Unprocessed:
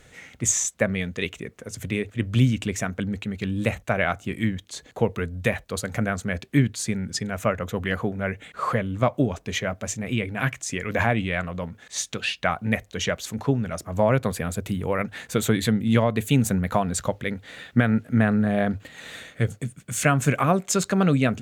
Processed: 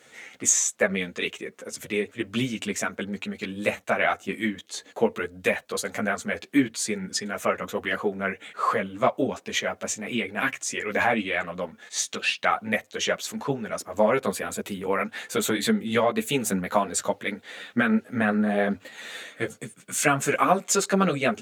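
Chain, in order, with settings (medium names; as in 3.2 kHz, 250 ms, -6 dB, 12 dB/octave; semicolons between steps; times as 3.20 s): high-pass 290 Hz 12 dB/octave; three-phase chorus; trim +4.5 dB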